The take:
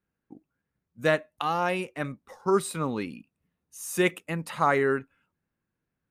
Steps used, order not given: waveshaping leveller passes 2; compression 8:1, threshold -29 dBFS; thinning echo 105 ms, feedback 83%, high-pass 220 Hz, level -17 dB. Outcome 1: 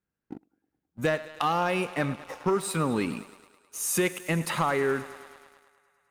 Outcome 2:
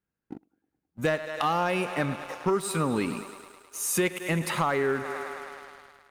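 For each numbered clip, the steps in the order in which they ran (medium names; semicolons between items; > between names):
compression > thinning echo > waveshaping leveller; thinning echo > compression > waveshaping leveller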